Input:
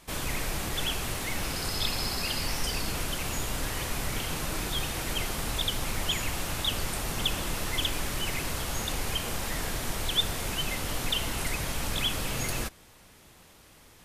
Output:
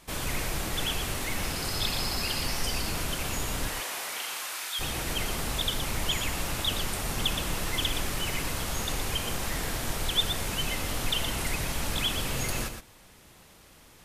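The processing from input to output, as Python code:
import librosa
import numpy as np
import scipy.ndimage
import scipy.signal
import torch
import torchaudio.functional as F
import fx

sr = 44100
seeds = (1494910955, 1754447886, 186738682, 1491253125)

y = fx.highpass(x, sr, hz=fx.line((3.68, 430.0), (4.79, 1400.0)), slope=12, at=(3.68, 4.79), fade=0.02)
y = y + 10.0 ** (-8.0 / 20.0) * np.pad(y, (int(119 * sr / 1000.0), 0))[:len(y)]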